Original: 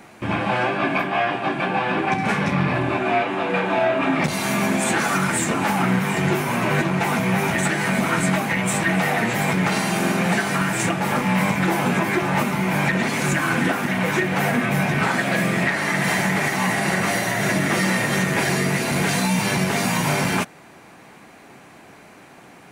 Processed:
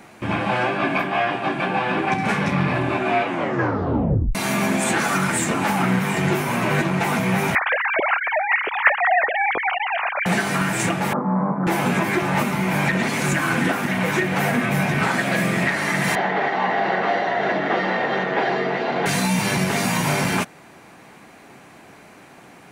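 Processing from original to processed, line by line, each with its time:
3.26 s: tape stop 1.09 s
7.55–10.26 s: formants replaced by sine waves
11.13–11.67 s: elliptic band-pass 160–1200 Hz
16.15–19.06 s: cabinet simulation 290–3500 Hz, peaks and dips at 450 Hz +6 dB, 750 Hz +8 dB, 2.4 kHz -8 dB

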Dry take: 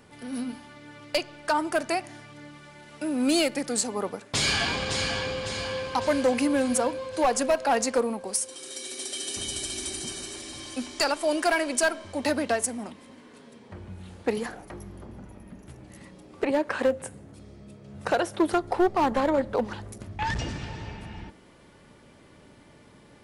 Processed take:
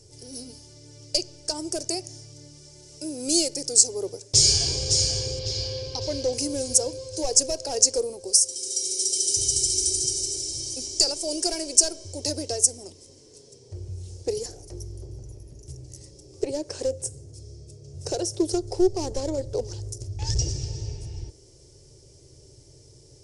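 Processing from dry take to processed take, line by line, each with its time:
5.39–6.33 s: resonant high shelf 6 kHz -12.5 dB, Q 1.5
whole clip: FFT filter 130 Hz 0 dB, 210 Hz -27 dB, 380 Hz -3 dB, 1.2 kHz -29 dB, 1.7 kHz -27 dB, 3.8 kHz -12 dB, 5.4 kHz +9 dB, 9.3 kHz +1 dB, 14 kHz -18 dB; trim +7.5 dB

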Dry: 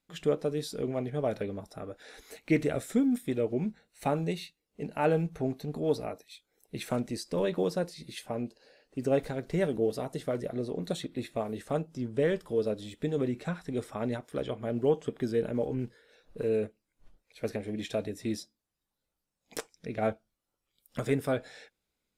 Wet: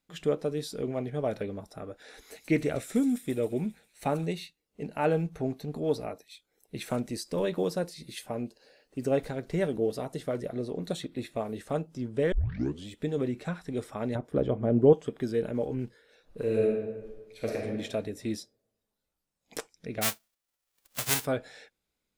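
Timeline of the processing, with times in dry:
2.22–4.26 s: feedback echo behind a high-pass 135 ms, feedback 57%, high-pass 3.9 kHz, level -5 dB
6.89–9.11 s: treble shelf 8.8 kHz +6 dB
12.32 s: tape start 0.55 s
14.15–14.93 s: tilt shelf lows +9 dB, about 1.2 kHz
16.42–17.57 s: reverb throw, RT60 1.3 s, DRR -2 dB
20.01–21.24 s: formants flattened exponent 0.1

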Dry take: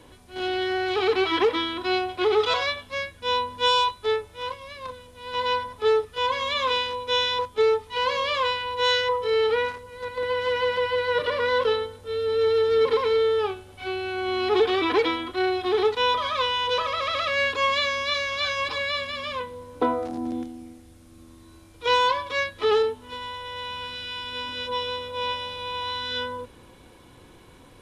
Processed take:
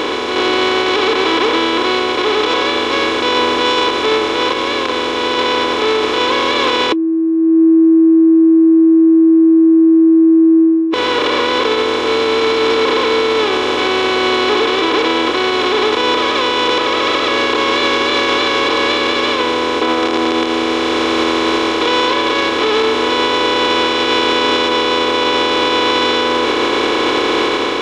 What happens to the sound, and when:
6.92–10.94 s: bleep 325 Hz -14.5 dBFS
whole clip: spectral levelling over time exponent 0.2; level rider; peak limiter -5 dBFS

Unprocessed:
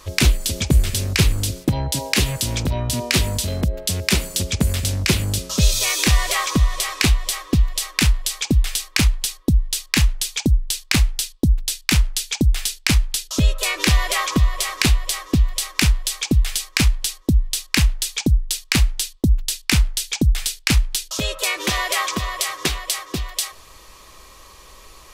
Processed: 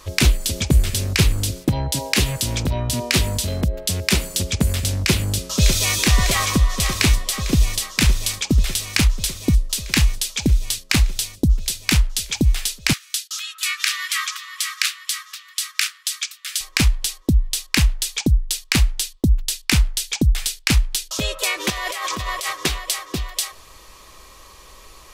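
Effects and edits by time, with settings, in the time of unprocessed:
5.00–5.95 s: echo throw 600 ms, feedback 80%, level -6.5 dB
12.93–16.61 s: Chebyshev high-pass 1.2 kHz, order 6
21.70–22.53 s: compressor with a negative ratio -26 dBFS

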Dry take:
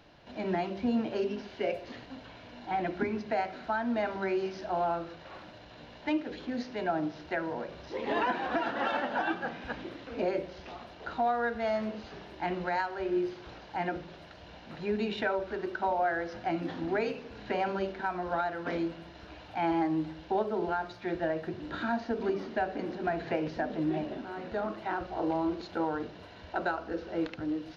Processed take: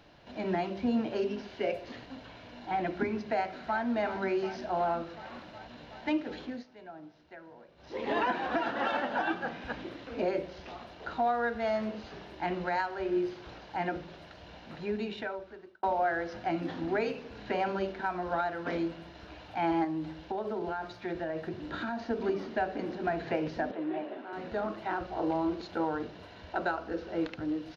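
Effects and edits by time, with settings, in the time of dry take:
3.27–3.91 s: echo throw 370 ms, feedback 80%, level -12.5 dB
6.42–8.00 s: dip -16.5 dB, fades 0.24 s
14.65–15.83 s: fade out
19.84–22.10 s: compression, threshold -30 dBFS
23.71–24.33 s: three-band isolator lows -24 dB, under 280 Hz, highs -16 dB, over 3.2 kHz

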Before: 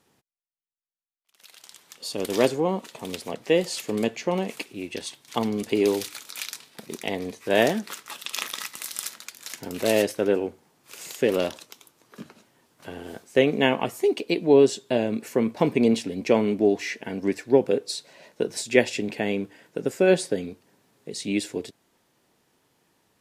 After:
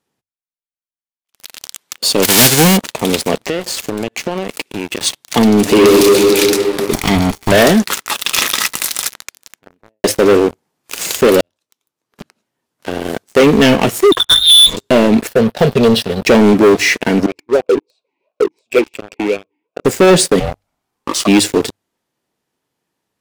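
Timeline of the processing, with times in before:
2.22–2.76 s: formants flattened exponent 0.3
3.49–5.01 s: compression 5:1, threshold -37 dBFS
5.60–6.19 s: reverb throw, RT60 2.8 s, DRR -0.5 dB
6.93–7.52 s: comb filter that takes the minimum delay 0.91 ms
8.64–10.04 s: studio fade out
11.41–13.46 s: fade in
14.12–14.77 s: frequency inversion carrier 3.9 kHz
15.27–16.27 s: static phaser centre 1.5 kHz, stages 8
17.26–19.85 s: talking filter a-u 2.8 Hz
20.39–21.26 s: ring modulator 290 Hz -> 890 Hz
whole clip: hum notches 50/100 Hz; dynamic bell 1 kHz, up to -6 dB, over -36 dBFS, Q 1.1; waveshaping leveller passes 5; trim +2 dB

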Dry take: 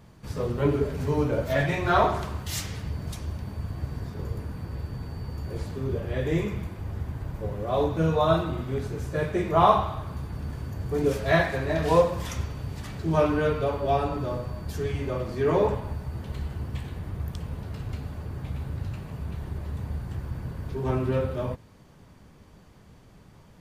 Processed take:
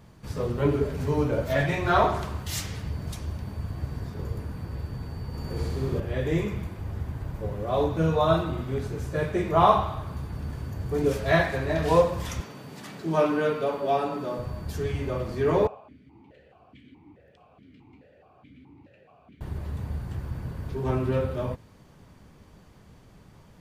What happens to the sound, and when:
5.27–6.00 s: flutter echo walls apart 11.2 m, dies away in 1.5 s
12.40–14.39 s: high-pass 170 Hz 24 dB/octave
15.67–19.41 s: stepped vowel filter 4.7 Hz

